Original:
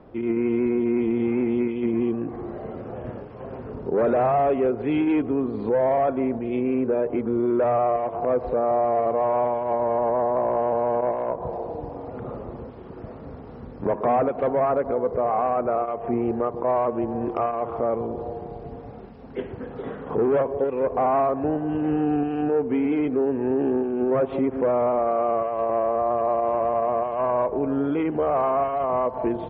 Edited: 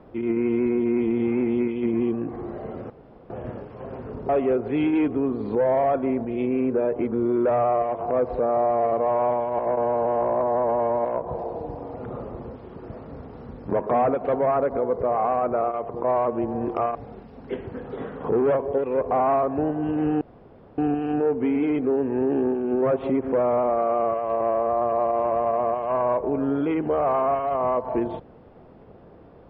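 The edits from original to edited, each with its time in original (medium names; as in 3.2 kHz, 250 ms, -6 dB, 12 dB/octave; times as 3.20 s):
2.90 s: insert room tone 0.40 s
3.89–4.43 s: delete
9.73–11.19 s: reverse
16.03–16.49 s: delete
17.55–18.81 s: delete
22.07 s: insert room tone 0.57 s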